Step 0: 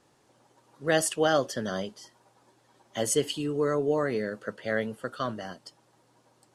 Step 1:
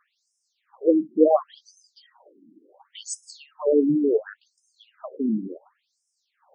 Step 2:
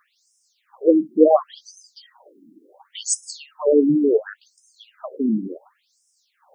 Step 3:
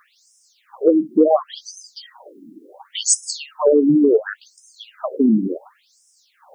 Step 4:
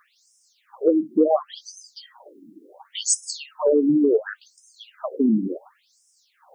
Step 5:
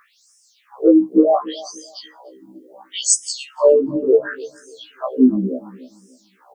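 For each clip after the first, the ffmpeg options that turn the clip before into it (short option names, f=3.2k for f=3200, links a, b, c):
-filter_complex "[0:a]tiltshelf=f=890:g=9.5,asplit=2[a][b];[b]acompressor=threshold=-29dB:ratio=6,volume=-2dB[c];[a][c]amix=inputs=2:normalize=0,afftfilt=real='re*between(b*sr/1024,240*pow(7200/240,0.5+0.5*sin(2*PI*0.7*pts/sr))/1.41,240*pow(7200/240,0.5+0.5*sin(2*PI*0.7*pts/sr))*1.41)':imag='im*between(b*sr/1024,240*pow(7200/240,0.5+0.5*sin(2*PI*0.7*pts/sr))/1.41,240*pow(7200/240,0.5+0.5*sin(2*PI*0.7*pts/sr))*1.41)':win_size=1024:overlap=0.75,volume=4.5dB"
-af "highshelf=f=4.6k:g=10,volume=3.5dB"
-af "acompressor=threshold=-19dB:ratio=5,volume=8dB"
-af "flanger=delay=1.8:depth=2.2:regen=-79:speed=1.2:shape=triangular"
-filter_complex "[0:a]asplit=2[a][b];[b]adelay=294,lowpass=f=1.3k:p=1,volume=-18dB,asplit=2[c][d];[d]adelay=294,lowpass=f=1.3k:p=1,volume=0.29,asplit=2[e][f];[f]adelay=294,lowpass=f=1.3k:p=1,volume=0.29[g];[a][c][e][g]amix=inputs=4:normalize=0,afftfilt=real='re*1.73*eq(mod(b,3),0)':imag='im*1.73*eq(mod(b,3),0)':win_size=2048:overlap=0.75,volume=7.5dB"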